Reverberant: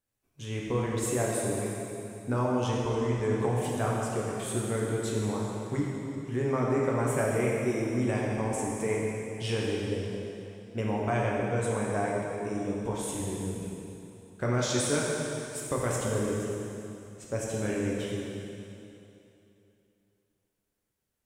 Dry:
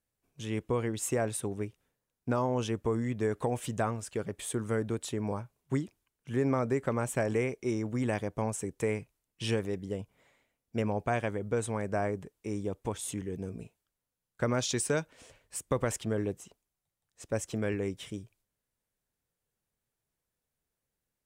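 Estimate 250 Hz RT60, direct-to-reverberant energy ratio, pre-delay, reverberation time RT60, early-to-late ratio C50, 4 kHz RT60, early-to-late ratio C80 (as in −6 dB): 2.8 s, −4.5 dB, 4 ms, 2.9 s, −1.5 dB, 2.7 s, 0.0 dB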